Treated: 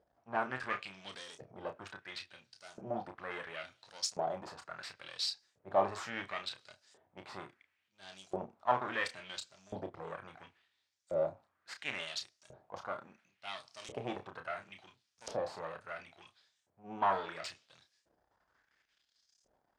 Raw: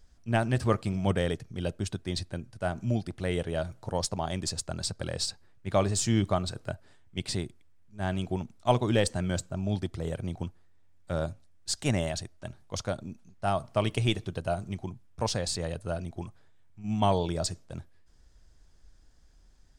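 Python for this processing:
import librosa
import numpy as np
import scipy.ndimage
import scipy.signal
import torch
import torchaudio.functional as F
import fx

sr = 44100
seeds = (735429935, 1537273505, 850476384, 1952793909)

y = np.where(x < 0.0, 10.0 ** (-12.0 / 20.0) * x, x)
y = scipy.signal.sosfilt(scipy.signal.butter(2, 46.0, 'highpass', fs=sr, output='sos'), y)
y = fx.high_shelf(y, sr, hz=7200.0, db=-7.5)
y = fx.transient(y, sr, attack_db=-3, sustain_db=4)
y = fx.filter_lfo_bandpass(y, sr, shape='saw_up', hz=0.72, low_hz=530.0, high_hz=7100.0, q=2.3)
y = fx.doubler(y, sr, ms=31.0, db=-7.5)
y = y * 10.0 ** (7.0 / 20.0)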